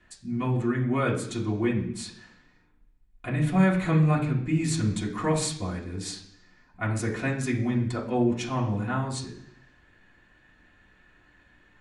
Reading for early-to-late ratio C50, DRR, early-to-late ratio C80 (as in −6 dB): 8.0 dB, −5.5 dB, 11.5 dB